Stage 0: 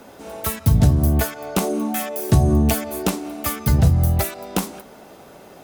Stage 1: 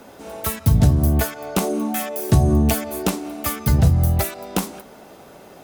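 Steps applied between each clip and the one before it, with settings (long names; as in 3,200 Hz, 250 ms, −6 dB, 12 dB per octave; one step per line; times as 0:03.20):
no processing that can be heard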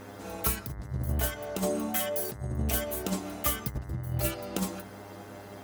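stiff-string resonator 61 Hz, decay 0.31 s, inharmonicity 0.008
compressor whose output falls as the input rises −29 dBFS, ratio −0.5
hum with harmonics 100 Hz, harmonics 21, −49 dBFS −4 dB per octave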